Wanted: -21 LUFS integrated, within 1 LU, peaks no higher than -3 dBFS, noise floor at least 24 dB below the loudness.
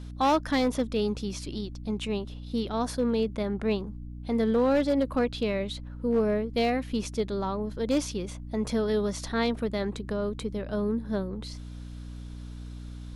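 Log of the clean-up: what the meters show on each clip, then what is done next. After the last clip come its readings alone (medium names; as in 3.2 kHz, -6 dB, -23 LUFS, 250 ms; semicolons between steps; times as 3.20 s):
clipped samples 0.7%; clipping level -18.5 dBFS; hum 60 Hz; highest harmonic 300 Hz; hum level -38 dBFS; loudness -29.0 LUFS; peak level -18.5 dBFS; loudness target -21.0 LUFS
-> clip repair -18.5 dBFS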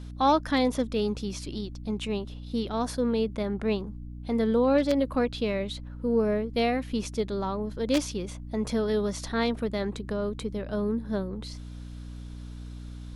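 clipped samples 0.0%; hum 60 Hz; highest harmonic 300 Hz; hum level -37 dBFS
-> hum notches 60/120/180/240/300 Hz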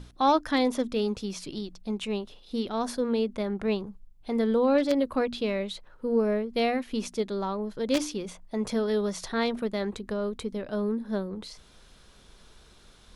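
hum not found; loudness -29.0 LUFS; peak level -9.5 dBFS; loudness target -21.0 LUFS
-> trim +8 dB; peak limiter -3 dBFS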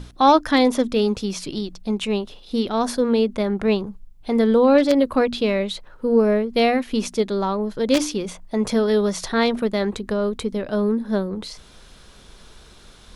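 loudness -21.0 LUFS; peak level -3.0 dBFS; noise floor -47 dBFS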